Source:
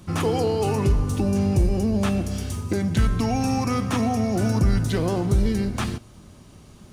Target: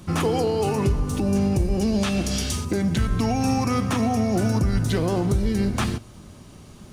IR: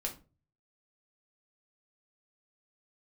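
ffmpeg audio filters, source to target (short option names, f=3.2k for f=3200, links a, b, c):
-filter_complex "[0:a]asettb=1/sr,asplit=3[a][b][c];[a]atrim=end=1.814[d];[b]atrim=start=1.81:end=2.65,asetpts=PTS-STARTPTS,afade=t=in:d=0.004:c=qsin,afade=t=out:st=0.836:d=0.004:c=qsin,equalizer=f=4.3k:t=o:w=2.2:g=9.5[e];[c]atrim=start=2.646[f];[d][e]acrossfade=d=0.004:c1=hsin:c2=qsin[g];[g][f]acrossfade=d=0.004:c1=qsin:c2=hsin,alimiter=limit=-15.5dB:level=0:latency=1:release=216,bandreject=f=50:t=h:w=6,bandreject=f=100:t=h:w=6,volume=3dB"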